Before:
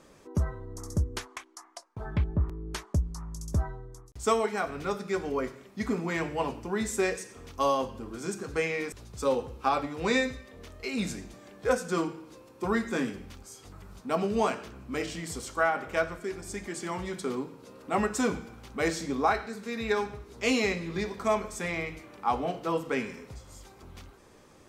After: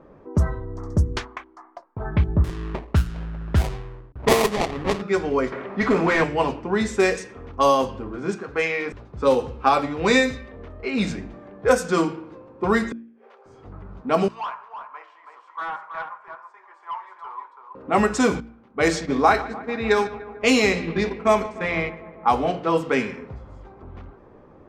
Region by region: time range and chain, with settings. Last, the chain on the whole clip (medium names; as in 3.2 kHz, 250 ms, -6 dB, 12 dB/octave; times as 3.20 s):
2.44–5.02 s: treble shelf 3.2 kHz -10 dB + sample-rate reducer 1.5 kHz, jitter 20%
5.52–6.24 s: upward compressor, threshold -42 dBFS + overdrive pedal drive 20 dB, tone 1.4 kHz, clips at -18 dBFS + doubling 25 ms -12.5 dB
8.35–8.86 s: bass shelf 360 Hz -10 dB + hard clipper -22.5 dBFS
12.92–13.46 s: compression 3:1, threshold -42 dBFS + inverted gate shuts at -35 dBFS, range -26 dB + brick-wall FIR high-pass 380 Hz
14.28–17.75 s: ladder high-pass 940 Hz, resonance 80% + hard clipper -34 dBFS + delay 327 ms -6 dB
18.40–22.30 s: gate -37 dBFS, range -13 dB + filtered feedback delay 148 ms, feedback 74%, low-pass 5 kHz, level -17 dB
whole clip: de-hum 57.53 Hz, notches 6; level-controlled noise filter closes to 990 Hz, open at -22.5 dBFS; trim +8.5 dB